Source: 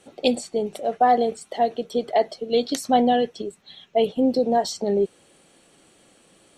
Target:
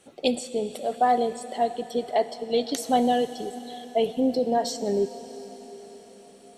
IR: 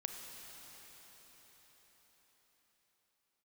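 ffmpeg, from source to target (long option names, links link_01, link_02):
-filter_complex "[0:a]asplit=2[link_01][link_02];[link_02]highshelf=frequency=6400:gain=11[link_03];[1:a]atrim=start_sample=2205[link_04];[link_03][link_04]afir=irnorm=-1:irlink=0,volume=-4.5dB[link_05];[link_01][link_05]amix=inputs=2:normalize=0,volume=-6.5dB"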